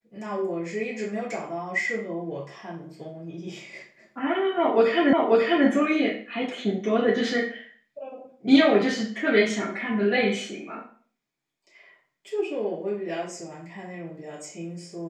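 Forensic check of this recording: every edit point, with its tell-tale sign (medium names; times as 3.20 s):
5.13 s: repeat of the last 0.54 s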